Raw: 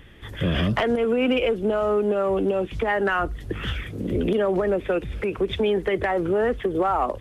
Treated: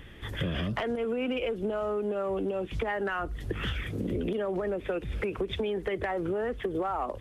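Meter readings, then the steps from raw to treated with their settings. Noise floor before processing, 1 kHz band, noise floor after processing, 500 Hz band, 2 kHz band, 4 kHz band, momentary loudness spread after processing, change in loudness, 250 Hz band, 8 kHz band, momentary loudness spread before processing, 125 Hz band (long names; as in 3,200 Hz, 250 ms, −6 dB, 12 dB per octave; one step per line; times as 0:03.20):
−38 dBFS, −8.5 dB, −44 dBFS, −8.5 dB, −7.5 dB, −6.5 dB, 3 LU, −8.0 dB, −8.0 dB, can't be measured, 8 LU, −6.5 dB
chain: downward compressor 6 to 1, threshold −28 dBFS, peak gain reduction 10 dB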